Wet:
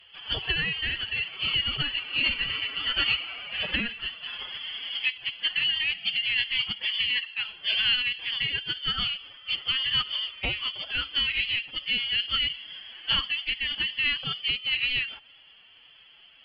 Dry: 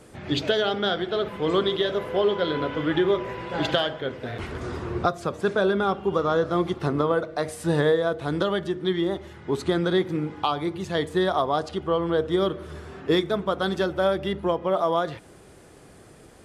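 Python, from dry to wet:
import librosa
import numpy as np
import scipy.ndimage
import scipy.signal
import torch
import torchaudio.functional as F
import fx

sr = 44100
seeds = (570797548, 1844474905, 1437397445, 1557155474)

y = fx.freq_invert(x, sr, carrier_hz=3300)
y = fx.pitch_keep_formants(y, sr, semitones=7.0)
y = y * librosa.db_to_amplitude(-4.0)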